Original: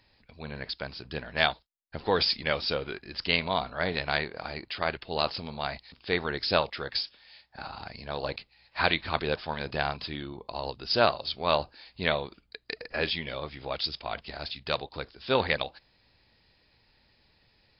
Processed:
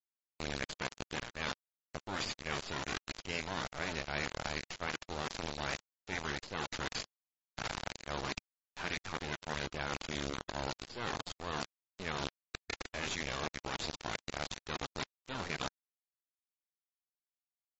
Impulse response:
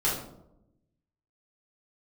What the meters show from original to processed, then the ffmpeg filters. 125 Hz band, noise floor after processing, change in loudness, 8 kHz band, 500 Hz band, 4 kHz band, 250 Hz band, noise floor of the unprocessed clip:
-6.5 dB, under -85 dBFS, -9.5 dB, no reading, -13.0 dB, -10.0 dB, -6.5 dB, -67 dBFS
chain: -filter_complex "[0:a]acrossover=split=3000[s0][s1];[s1]acompressor=threshold=0.00708:ratio=4:attack=1:release=60[s2];[s0][s2]amix=inputs=2:normalize=0,acrusher=bits=3:dc=4:mix=0:aa=0.000001,areverse,acompressor=threshold=0.0158:ratio=16,areverse,aresample=16000,aresample=44100,afftfilt=real='re*lt(hypot(re,im),0.0355)':imag='im*lt(hypot(re,im),0.0355)':win_size=1024:overlap=0.75,volume=2.11" -ar 32000 -c:a libmp3lame -b:a 32k

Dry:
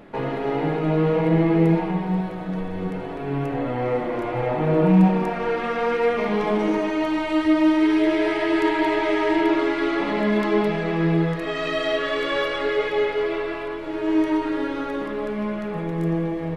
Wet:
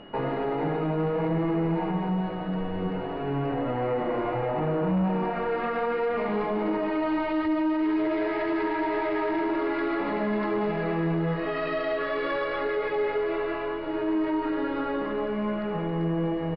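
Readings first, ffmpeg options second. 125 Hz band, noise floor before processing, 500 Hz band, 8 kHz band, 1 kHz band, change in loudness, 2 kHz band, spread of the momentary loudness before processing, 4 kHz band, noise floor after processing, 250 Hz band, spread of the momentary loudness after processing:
-6.0 dB, -30 dBFS, -4.5 dB, no reading, -3.0 dB, -5.5 dB, -6.0 dB, 9 LU, -9.5 dB, -31 dBFS, -6.0 dB, 4 LU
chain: -filter_complex "[0:a]aresample=11025,asoftclip=type=tanh:threshold=0.168,aresample=44100,aeval=exprs='val(0)+0.00708*sin(2*PI*2900*n/s)':c=same,acrossover=split=1400[s0][s1];[s0]crystalizer=i=8:c=0[s2];[s1]equalizer=f=3200:w=4.4:g=-9[s3];[s2][s3]amix=inputs=2:normalize=0,alimiter=limit=0.119:level=0:latency=1:release=61,aemphasis=mode=reproduction:type=50fm,volume=0.794"

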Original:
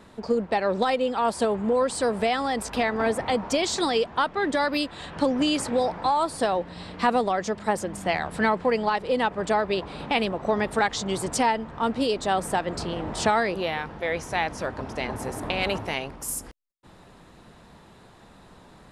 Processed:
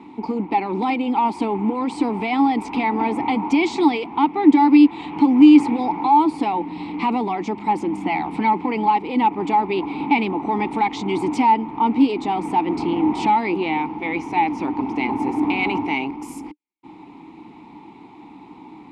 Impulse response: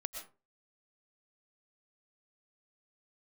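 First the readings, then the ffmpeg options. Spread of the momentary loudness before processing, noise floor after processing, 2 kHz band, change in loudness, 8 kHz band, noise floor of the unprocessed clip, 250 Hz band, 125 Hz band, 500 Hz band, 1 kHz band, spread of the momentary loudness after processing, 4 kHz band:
7 LU, -43 dBFS, +1.0 dB, +6.0 dB, under -10 dB, -51 dBFS, +12.0 dB, +1.5 dB, -2.0 dB, +7.0 dB, 10 LU, -3.5 dB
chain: -filter_complex "[0:a]apsyclip=12.6,asplit=3[s0][s1][s2];[s0]bandpass=f=300:t=q:w=8,volume=1[s3];[s1]bandpass=f=870:t=q:w=8,volume=0.501[s4];[s2]bandpass=f=2240:t=q:w=8,volume=0.355[s5];[s3][s4][s5]amix=inputs=3:normalize=0,volume=0.891"

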